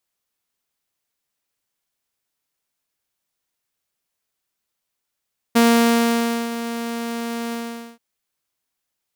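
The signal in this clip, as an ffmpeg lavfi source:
-f lavfi -i "aevalsrc='0.376*(2*mod(233*t,1)-1)':d=2.432:s=44100,afade=t=in:d=0.015,afade=t=out:st=0.015:d=0.924:silence=0.211,afade=t=out:st=1.97:d=0.462"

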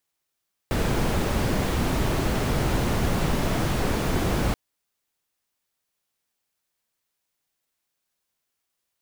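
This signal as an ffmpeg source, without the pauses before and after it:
-f lavfi -i "anoisesrc=c=brown:a=0.331:d=3.83:r=44100:seed=1"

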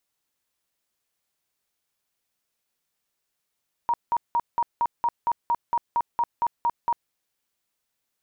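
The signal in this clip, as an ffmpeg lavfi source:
-f lavfi -i "aevalsrc='0.112*sin(2*PI*945*mod(t,0.23))*lt(mod(t,0.23),45/945)':d=3.22:s=44100"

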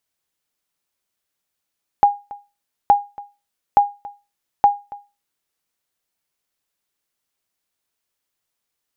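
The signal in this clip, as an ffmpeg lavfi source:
-f lavfi -i "aevalsrc='0.631*(sin(2*PI*815*mod(t,0.87))*exp(-6.91*mod(t,0.87)/0.27)+0.0841*sin(2*PI*815*max(mod(t,0.87)-0.28,0))*exp(-6.91*max(mod(t,0.87)-0.28,0)/0.27))':d=3.48:s=44100"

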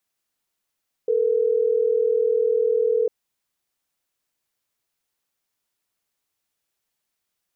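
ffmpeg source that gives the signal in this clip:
-f lavfi -i "aevalsrc='0.1*(sin(2*PI*440*t)+sin(2*PI*480*t))*clip(min(mod(t,6),2-mod(t,6))/0.005,0,1)':d=3.12:s=44100"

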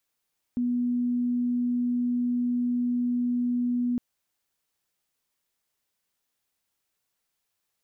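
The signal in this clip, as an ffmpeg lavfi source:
-f lavfi -i "sine=f=244:d=3.41:r=44100,volume=-4.94dB"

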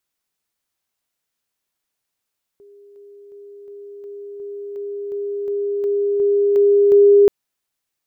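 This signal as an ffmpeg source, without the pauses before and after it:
-f lavfi -i "aevalsrc='pow(10,(-43+3*floor(t/0.36))/20)*sin(2*PI*405*t)':d=4.68:s=44100"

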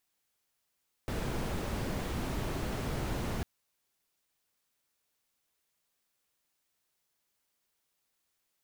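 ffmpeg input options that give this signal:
-f lavfi -i "anoisesrc=c=brown:a=0.0933:d=2.35:r=44100:seed=1"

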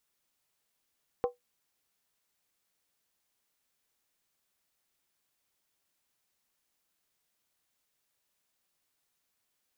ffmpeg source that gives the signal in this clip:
-f lavfi -i "aevalsrc='0.0841*pow(10,-3*t/0.15)*sin(2*PI*489*t)+0.0376*pow(10,-3*t/0.119)*sin(2*PI*779.5*t)+0.0168*pow(10,-3*t/0.103)*sin(2*PI*1044.5*t)+0.0075*pow(10,-3*t/0.099)*sin(2*PI*1122.7*t)+0.00335*pow(10,-3*t/0.092)*sin(2*PI*1297.3*t)':d=0.63:s=44100"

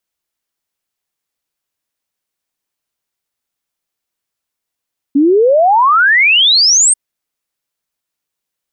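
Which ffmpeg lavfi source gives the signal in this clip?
-f lavfi -i "aevalsrc='0.501*clip(min(t,1.79-t)/0.01,0,1)*sin(2*PI*270*1.79/log(8800/270)*(exp(log(8800/270)*t/1.79)-1))':d=1.79:s=44100"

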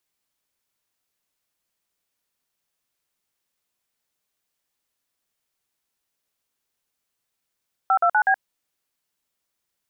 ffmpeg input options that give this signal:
-f lavfi -i "aevalsrc='0.133*clip(min(mod(t,0.123),0.074-mod(t,0.123))/0.002,0,1)*(eq(floor(t/0.123),0)*(sin(2*PI*770*mod(t,0.123))+sin(2*PI*1336*mod(t,0.123)))+eq(floor(t/0.123),1)*(sin(2*PI*697*mod(t,0.123))+sin(2*PI*1336*mod(t,0.123)))+eq(floor(t/0.123),2)*(sin(2*PI*852*mod(t,0.123))+sin(2*PI*1477*mod(t,0.123)))+eq(floor(t/0.123),3)*(sin(2*PI*770*mod(t,0.123))+sin(2*PI*1633*mod(t,0.123))))':d=0.492:s=44100"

